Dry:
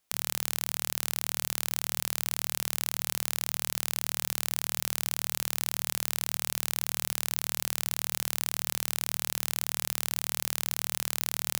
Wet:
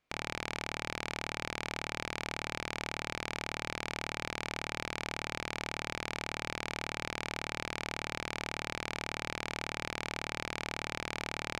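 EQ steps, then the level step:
head-to-tape spacing loss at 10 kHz 28 dB
parametric band 2,300 Hz +7 dB 0.22 octaves
notch filter 850 Hz, Q 12
+4.5 dB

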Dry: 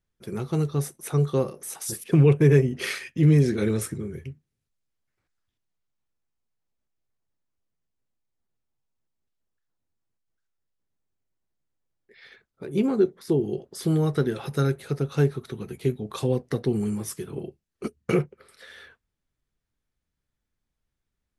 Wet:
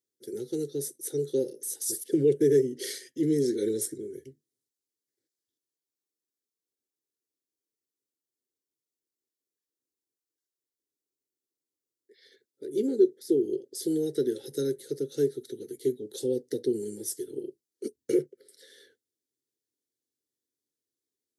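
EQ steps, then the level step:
Bessel high-pass filter 250 Hz, order 4
Butterworth band-reject 1,100 Hz, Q 0.55
phaser with its sweep stopped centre 680 Hz, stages 6
+2.5 dB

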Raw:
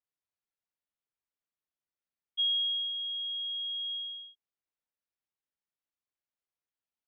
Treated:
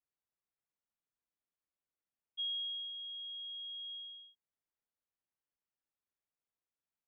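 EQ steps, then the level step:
high-frequency loss of the air 430 metres
0.0 dB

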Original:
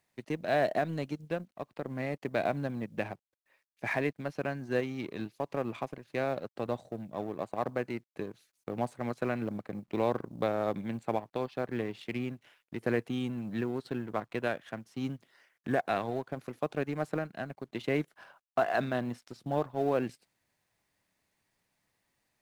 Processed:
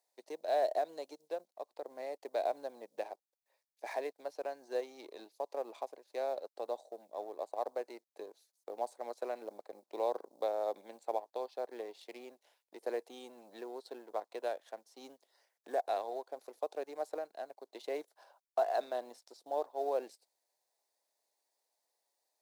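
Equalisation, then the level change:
high-pass filter 460 Hz 24 dB per octave
flat-topped bell 1,900 Hz −12 dB
−2.0 dB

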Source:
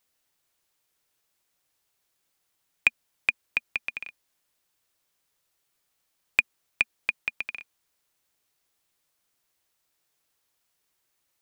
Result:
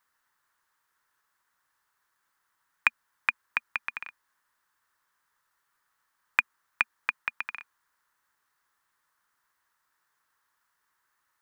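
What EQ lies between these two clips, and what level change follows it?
flat-topped bell 1,300 Hz +15 dB 1.3 octaves
−4.5 dB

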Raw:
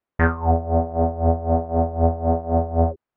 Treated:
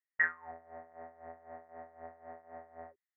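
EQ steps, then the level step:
resonant band-pass 1,900 Hz, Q 14
+4.0 dB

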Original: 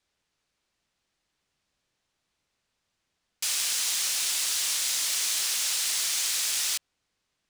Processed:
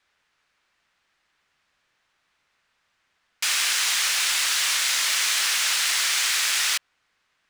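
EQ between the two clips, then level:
parametric band 1,600 Hz +13.5 dB 2.4 octaves
0.0 dB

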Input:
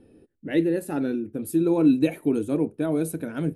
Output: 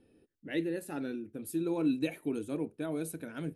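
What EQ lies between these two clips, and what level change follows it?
tilt shelving filter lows −5 dB, about 1,500 Hz
high-shelf EQ 7,000 Hz −7 dB
−6.5 dB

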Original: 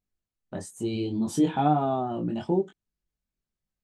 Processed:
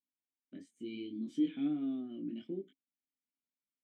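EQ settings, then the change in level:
formant filter i
high-pass filter 180 Hz 6 dB per octave
0.0 dB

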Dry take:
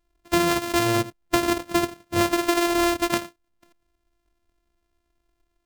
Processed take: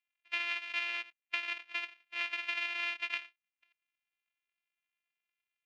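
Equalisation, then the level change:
high-pass with resonance 2,500 Hz, resonance Q 4.2
high-frequency loss of the air 74 metres
head-to-tape spacing loss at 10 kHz 30 dB
−4.0 dB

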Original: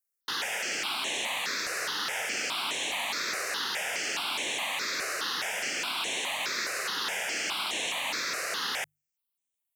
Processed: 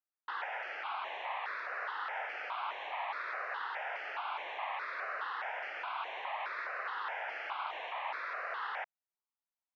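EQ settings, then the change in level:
four-pole ladder high-pass 620 Hz, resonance 30%
low-pass filter 1,600 Hz 12 dB per octave
high-frequency loss of the air 220 metres
+5.5 dB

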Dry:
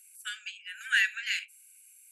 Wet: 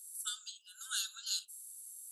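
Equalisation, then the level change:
elliptic band-stop filter 1,200–3,600 Hz, stop band 60 dB
dynamic equaliser 9,700 Hz, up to +4 dB, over −58 dBFS, Q 0.93
+4.0 dB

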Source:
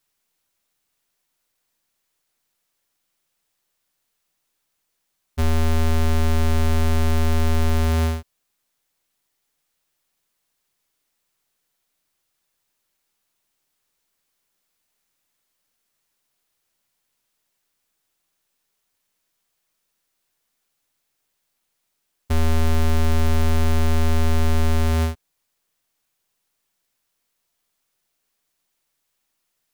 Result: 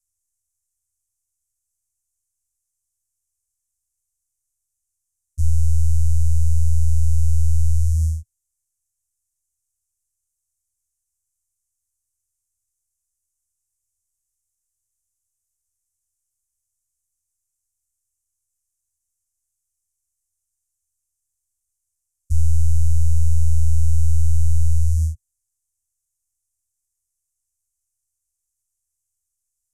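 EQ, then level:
elliptic band-stop filter 110–6,700 Hz, stop band 50 dB
Bessel low-pass filter 8,500 Hz, order 8
phaser with its sweep stopped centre 710 Hz, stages 8
+6.5 dB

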